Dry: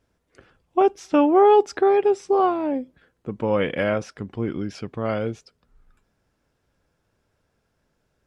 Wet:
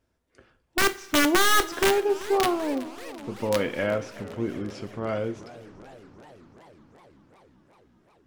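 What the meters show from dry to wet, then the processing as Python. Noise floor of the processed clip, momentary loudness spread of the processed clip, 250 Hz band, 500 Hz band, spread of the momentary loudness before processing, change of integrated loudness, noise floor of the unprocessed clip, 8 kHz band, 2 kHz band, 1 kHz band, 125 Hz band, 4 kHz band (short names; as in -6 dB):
-71 dBFS, 17 LU, -4.5 dB, -6.5 dB, 16 LU, -4.0 dB, -73 dBFS, n/a, +7.0 dB, -5.5 dB, -4.0 dB, +11.5 dB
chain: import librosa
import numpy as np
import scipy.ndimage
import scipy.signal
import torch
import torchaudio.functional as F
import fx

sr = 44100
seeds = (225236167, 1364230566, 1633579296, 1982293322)

y = (np.mod(10.0 ** (10.0 / 20.0) * x + 1.0, 2.0) - 1.0) / 10.0 ** (10.0 / 20.0)
y = fx.rev_double_slope(y, sr, seeds[0], early_s=0.31, late_s=2.6, knee_db=-21, drr_db=9.0)
y = fx.echo_warbled(y, sr, ms=379, feedback_pct=75, rate_hz=2.8, cents=201, wet_db=-18.5)
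y = F.gain(torch.from_numpy(y), -4.5).numpy()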